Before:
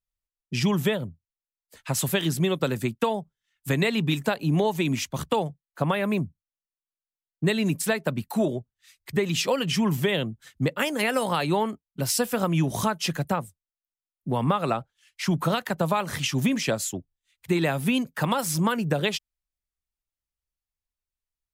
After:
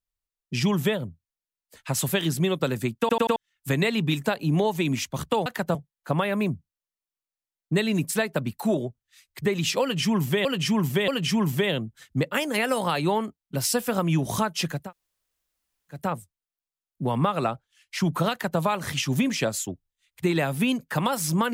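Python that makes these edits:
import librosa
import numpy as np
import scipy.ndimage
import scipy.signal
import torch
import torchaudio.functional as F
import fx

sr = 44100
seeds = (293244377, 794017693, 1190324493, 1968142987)

y = fx.edit(x, sr, fx.stutter_over(start_s=3.0, slice_s=0.09, count=4),
    fx.repeat(start_s=9.53, length_s=0.63, count=3),
    fx.insert_room_tone(at_s=13.26, length_s=1.19, crossfade_s=0.24),
    fx.duplicate(start_s=15.57, length_s=0.29, to_s=5.46), tone=tone)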